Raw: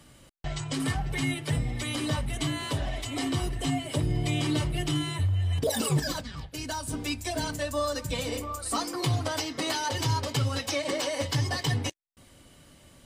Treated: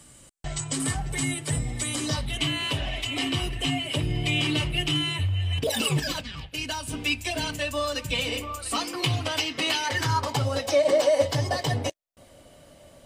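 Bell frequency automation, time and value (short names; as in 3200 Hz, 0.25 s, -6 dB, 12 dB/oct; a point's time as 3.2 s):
bell +13 dB 0.66 oct
1.96 s 8100 Hz
2.4 s 2700 Hz
9.78 s 2700 Hz
10.5 s 610 Hz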